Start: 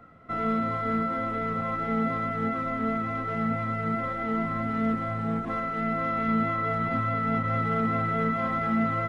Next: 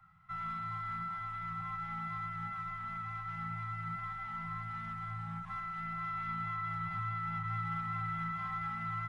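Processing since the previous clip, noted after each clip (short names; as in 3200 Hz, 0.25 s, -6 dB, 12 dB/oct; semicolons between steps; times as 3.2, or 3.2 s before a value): Chebyshev band-stop 190–790 Hz, order 5; gain -8.5 dB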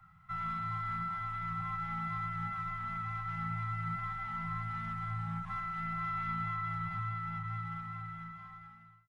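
ending faded out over 2.89 s; low shelf 170 Hz +4 dB; gain +2 dB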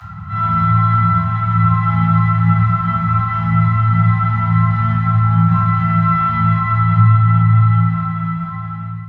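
upward compressor, threshold -45 dBFS; reverb RT60 1.2 s, pre-delay 3 ms, DRR -11.5 dB; gain -1.5 dB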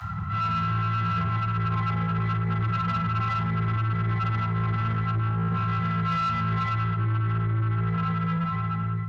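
reverse; compressor 6:1, threshold -19 dBFS, peak gain reduction 12 dB; reverse; soft clip -21.5 dBFS, distortion -13 dB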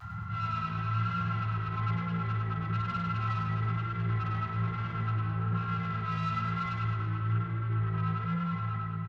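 vibrato 1.1 Hz 43 cents; on a send: reverse bouncing-ball echo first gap 0.1 s, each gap 1.1×, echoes 5; on the sum: gain -8.5 dB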